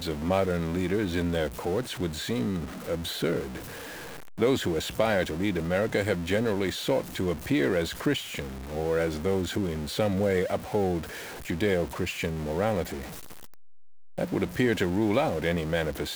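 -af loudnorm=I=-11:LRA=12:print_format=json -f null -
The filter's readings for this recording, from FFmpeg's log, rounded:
"input_i" : "-28.2",
"input_tp" : "-10.6",
"input_lra" : "3.0",
"input_thresh" : "-38.6",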